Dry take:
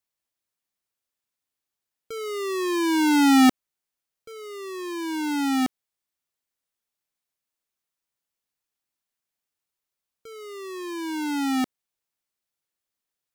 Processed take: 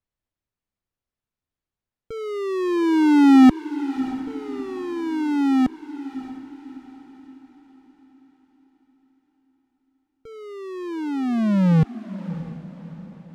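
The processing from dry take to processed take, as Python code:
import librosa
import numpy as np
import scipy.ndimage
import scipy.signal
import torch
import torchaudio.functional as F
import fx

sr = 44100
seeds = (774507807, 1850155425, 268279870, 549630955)

y = fx.tape_stop_end(x, sr, length_s=2.48)
y = fx.riaa(y, sr, side='playback')
y = fx.echo_diffused(y, sr, ms=634, feedback_pct=45, wet_db=-13.5)
y = y * 10.0 ** (-1.0 / 20.0)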